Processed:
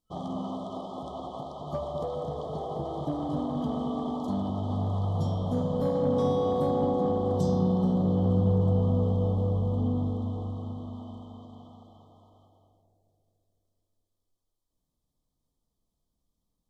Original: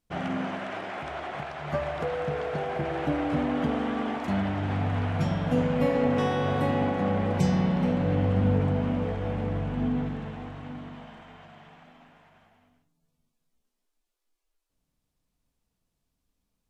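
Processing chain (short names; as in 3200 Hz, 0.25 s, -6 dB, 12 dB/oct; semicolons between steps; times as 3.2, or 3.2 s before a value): FFT band-reject 1300–3000 Hz; soft clip -15.5 dBFS, distortion -23 dB; analogue delay 0.215 s, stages 1024, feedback 68%, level -4 dB; gain -3.5 dB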